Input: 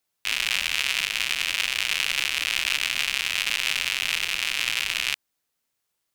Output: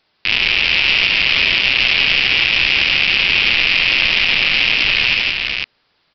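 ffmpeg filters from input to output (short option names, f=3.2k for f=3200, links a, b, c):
-af "aresample=11025,asoftclip=type=tanh:threshold=-21.5dB,aresample=44100,aecho=1:1:70|164|397|499:0.398|0.447|0.282|0.398,alimiter=level_in=20.5dB:limit=-1dB:release=50:level=0:latency=1,volume=-1dB"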